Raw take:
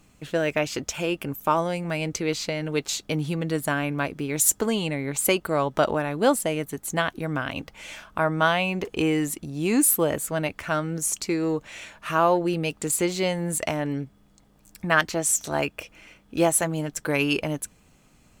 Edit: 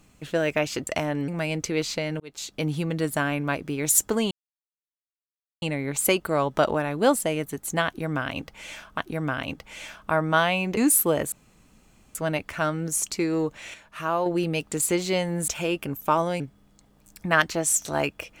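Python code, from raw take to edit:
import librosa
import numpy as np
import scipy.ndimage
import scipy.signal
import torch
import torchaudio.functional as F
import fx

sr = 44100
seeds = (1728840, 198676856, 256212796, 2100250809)

y = fx.edit(x, sr, fx.swap(start_s=0.87, length_s=0.92, other_s=13.58, other_length_s=0.41),
    fx.fade_in_span(start_s=2.71, length_s=0.47),
    fx.insert_silence(at_s=4.82, length_s=1.31),
    fx.repeat(start_s=7.06, length_s=1.12, count=2),
    fx.cut(start_s=8.85, length_s=0.85),
    fx.insert_room_tone(at_s=10.25, length_s=0.83),
    fx.clip_gain(start_s=11.84, length_s=0.52, db=-5.5), tone=tone)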